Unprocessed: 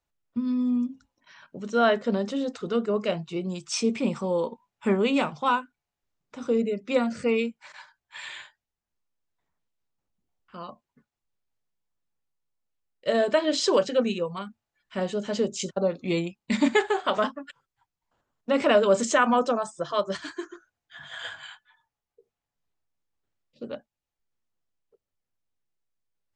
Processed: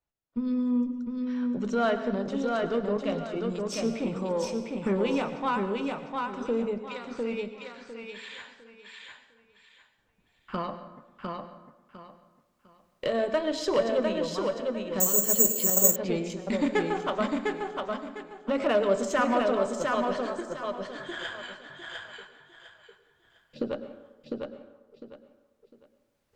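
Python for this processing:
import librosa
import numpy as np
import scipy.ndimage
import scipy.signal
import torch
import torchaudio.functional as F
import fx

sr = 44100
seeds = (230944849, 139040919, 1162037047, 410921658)

y = fx.recorder_agc(x, sr, target_db=-17.0, rise_db_per_s=6.0, max_gain_db=30)
y = fx.high_shelf(y, sr, hz=3000.0, db=-6.5)
y = fx.cheby_harmonics(y, sr, harmonics=(8,), levels_db=(-30,), full_scale_db=-9.5)
y = fx.bandpass_q(y, sr, hz=4100.0, q=0.65, at=(6.78, 8.38))
y = fx.echo_feedback(y, sr, ms=703, feedback_pct=26, wet_db=-3.5)
y = fx.rev_plate(y, sr, seeds[0], rt60_s=1.1, hf_ratio=0.6, predelay_ms=90, drr_db=10.5)
y = fx.resample_bad(y, sr, factor=6, down='filtered', up='zero_stuff', at=(15.0, 15.96))
y = y * librosa.db_to_amplitude(-4.5)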